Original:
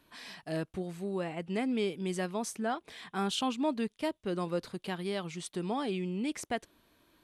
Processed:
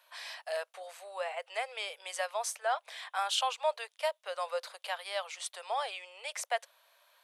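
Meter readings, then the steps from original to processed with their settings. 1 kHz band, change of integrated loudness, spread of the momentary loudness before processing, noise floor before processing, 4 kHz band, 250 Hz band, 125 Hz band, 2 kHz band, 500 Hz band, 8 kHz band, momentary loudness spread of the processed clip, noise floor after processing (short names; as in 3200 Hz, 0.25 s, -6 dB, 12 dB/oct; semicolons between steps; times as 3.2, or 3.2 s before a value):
+3.5 dB, -1.0 dB, 7 LU, -73 dBFS, +3.5 dB, under -40 dB, under -40 dB, +3.5 dB, -1.5 dB, +3.5 dB, 9 LU, -75 dBFS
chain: steep high-pass 530 Hz 72 dB/oct; gain +3.5 dB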